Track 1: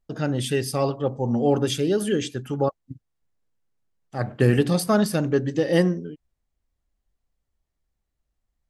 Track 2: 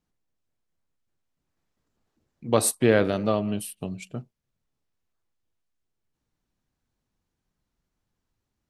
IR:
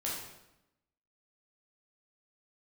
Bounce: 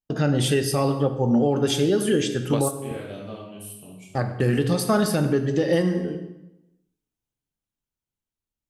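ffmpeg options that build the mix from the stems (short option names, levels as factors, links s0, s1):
-filter_complex "[0:a]agate=range=0.0355:threshold=0.0141:ratio=16:detection=peak,volume=1.41,asplit=3[s0][s1][s2];[s1]volume=0.422[s3];[1:a]dynaudnorm=f=280:g=13:m=1.88,aexciter=amount=1.4:drive=7.2:freq=2500,acompressor=threshold=0.141:ratio=3,volume=0.501,asplit=2[s4][s5];[s5]volume=0.266[s6];[s2]apad=whole_len=383330[s7];[s4][s7]sidechaingate=range=0.0224:threshold=0.0447:ratio=16:detection=peak[s8];[2:a]atrim=start_sample=2205[s9];[s3][s6]amix=inputs=2:normalize=0[s10];[s10][s9]afir=irnorm=-1:irlink=0[s11];[s0][s8][s11]amix=inputs=3:normalize=0,alimiter=limit=0.282:level=0:latency=1:release=319"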